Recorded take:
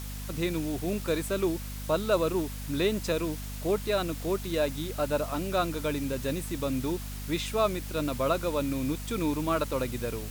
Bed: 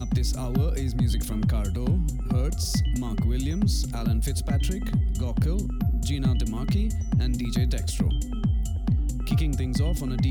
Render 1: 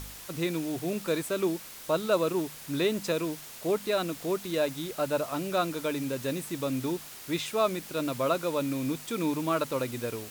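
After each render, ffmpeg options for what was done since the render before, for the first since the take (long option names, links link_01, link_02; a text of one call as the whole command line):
ffmpeg -i in.wav -af "bandreject=frequency=50:width_type=h:width=4,bandreject=frequency=100:width_type=h:width=4,bandreject=frequency=150:width_type=h:width=4,bandreject=frequency=200:width_type=h:width=4,bandreject=frequency=250:width_type=h:width=4" out.wav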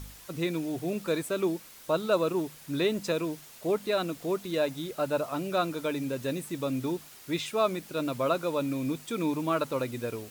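ffmpeg -i in.wav -af "afftdn=noise_reduction=6:noise_floor=-45" out.wav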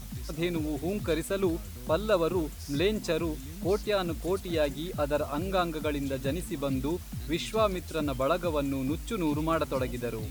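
ffmpeg -i in.wav -i bed.wav -filter_complex "[1:a]volume=-15dB[link_01];[0:a][link_01]amix=inputs=2:normalize=0" out.wav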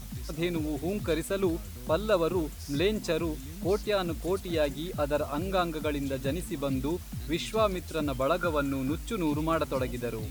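ffmpeg -i in.wav -filter_complex "[0:a]asettb=1/sr,asplit=3[link_01][link_02][link_03];[link_01]atrim=end=8.394[link_04];[link_02]atrim=start=8.39:end=8.98,asetpts=PTS-STARTPTS,afade=type=in:duration=0.004:curve=qsin,afade=type=out:start_time=0.586:duration=0.004:curve=qsin,equalizer=frequency=1400:width_type=o:width=0.21:gain=15[link_05];[link_03]atrim=start=8.976[link_06];[link_04][link_05]acrossfade=duration=0.004:curve1=hsin:curve2=qsin[link_07];[link_07][link_06]acrossfade=duration=0.004:curve1=qsin:curve2=hsin" out.wav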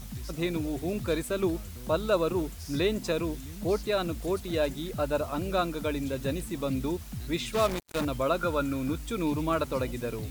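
ffmpeg -i in.wav -filter_complex "[0:a]asettb=1/sr,asplit=3[link_01][link_02][link_03];[link_01]atrim=end=7.544[link_04];[link_02]atrim=start=7.54:end=8.05,asetpts=PTS-STARTPTS,afade=type=in:duration=0.004:curve=qsin,afade=type=out:start_time=0.506:duration=0.004:curve=qsin,acrusher=bits=4:mix=0:aa=0.5[link_05];[link_03]atrim=start=8.046[link_06];[link_04][link_05]acrossfade=duration=0.004:curve1=hsin:curve2=qsin[link_07];[link_07][link_06]acrossfade=duration=0.004:curve1=qsin:curve2=hsin" out.wav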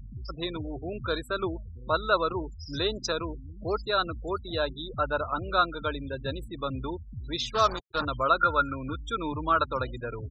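ffmpeg -i in.wav -af "afftfilt=real='re*gte(hypot(re,im),0.0158)':imag='im*gte(hypot(re,im),0.0158)':win_size=1024:overlap=0.75,firequalizer=gain_entry='entry(120,0);entry(170,-9);entry(430,-2);entry(620,-2);entry(1400,11);entry(2100,-8);entry(3300,5);entry(5900,12);entry(9100,-20);entry(16000,11)':delay=0.05:min_phase=1" out.wav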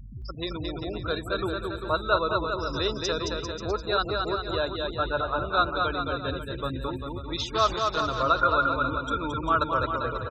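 ffmpeg -i in.wav -af "aecho=1:1:220|396|536.8|649.4|739.6:0.631|0.398|0.251|0.158|0.1" out.wav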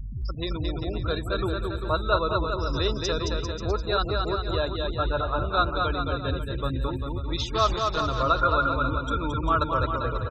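ffmpeg -i in.wav -af "lowshelf=frequency=110:gain=11,bandreject=frequency=1500:width=20" out.wav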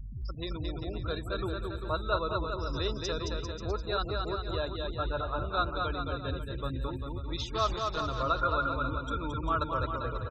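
ffmpeg -i in.wav -af "volume=-6.5dB" out.wav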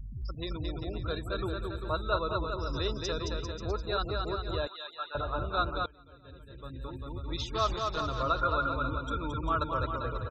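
ffmpeg -i in.wav -filter_complex "[0:a]asettb=1/sr,asplit=3[link_01][link_02][link_03];[link_01]atrim=end=4.674[link_04];[link_02]atrim=start=4.67:end=5.15,asetpts=PTS-STARTPTS,afade=type=in:duration=0.004:curve=qsin,afade=type=out:start_time=0.476:duration=0.004:curve=qsin,highpass=1100[link_05];[link_03]atrim=start=5.146[link_06];[link_04][link_05]acrossfade=duration=0.004:curve1=hsin:curve2=qsin[link_07];[link_07][link_06]acrossfade=duration=0.004:curve1=qsin:curve2=hsin,asplit=2[link_08][link_09];[link_08]atrim=end=5.86,asetpts=PTS-STARTPTS,afade=type=out:start_time=5.856:duration=0.004:curve=hsin:silence=0.0668344[link_10];[link_09]atrim=start=5.86,asetpts=PTS-STARTPTS,afade=type=in:duration=1.45:curve=qua:silence=0.0668344[link_11];[link_10][link_11]concat=n=2:v=0:a=1" out.wav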